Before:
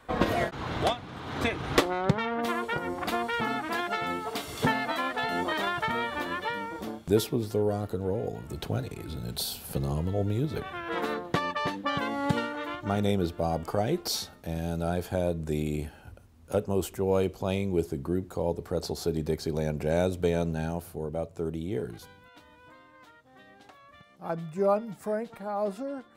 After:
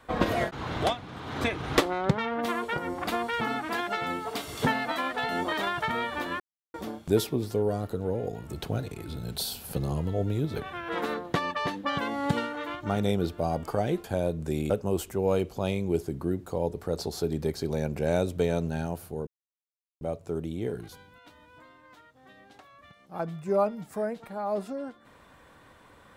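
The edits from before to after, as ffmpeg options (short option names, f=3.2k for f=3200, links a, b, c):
-filter_complex "[0:a]asplit=6[a][b][c][d][e][f];[a]atrim=end=6.4,asetpts=PTS-STARTPTS,afade=t=out:st=6.396:d=0.004:c=hsin[g];[b]atrim=start=6.4:end=6.74,asetpts=PTS-STARTPTS,volume=0[h];[c]atrim=start=6.74:end=14.042,asetpts=PTS-STARTPTS,afade=t=in:d=0.004:c=hsin[i];[d]atrim=start=15.048:end=15.712[j];[e]atrim=start=16.538:end=21.11,asetpts=PTS-STARTPTS,afade=t=out:st=4.568:d=0.004:c=hsin,apad=pad_dur=0.74[k];[f]atrim=start=21.11,asetpts=PTS-STARTPTS,afade=t=in:d=0.004:c=hsin[l];[g][h][i]concat=n=3:v=0:a=1[m];[m][j]acrossfade=d=0.004:c1=hsin:c2=hsin[n];[k][l]concat=n=2:v=0:a=1[o];[n][o]acrossfade=d=0.004:c1=hsin:c2=hsin"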